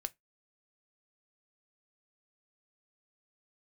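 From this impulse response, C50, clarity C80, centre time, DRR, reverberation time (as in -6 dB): 29.5 dB, 40.0 dB, 2 ms, 10.5 dB, 0.15 s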